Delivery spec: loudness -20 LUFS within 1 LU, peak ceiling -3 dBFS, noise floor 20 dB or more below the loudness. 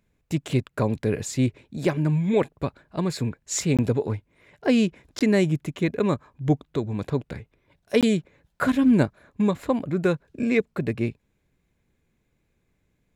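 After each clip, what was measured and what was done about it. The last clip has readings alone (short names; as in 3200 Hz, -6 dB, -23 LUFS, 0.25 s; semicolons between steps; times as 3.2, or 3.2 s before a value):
dropouts 3; longest dropout 17 ms; loudness -25.0 LUFS; peak -7.0 dBFS; loudness target -20.0 LUFS
-> interpolate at 3.77/5.19/8.01, 17 ms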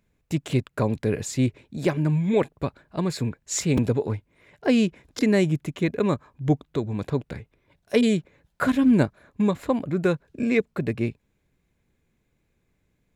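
dropouts 0; loudness -25.0 LUFS; peak -7.0 dBFS; loudness target -20.0 LUFS
-> gain +5 dB; limiter -3 dBFS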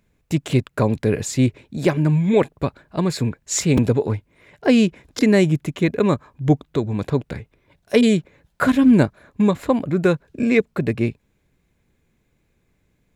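loudness -20.0 LUFS; peak -3.0 dBFS; noise floor -67 dBFS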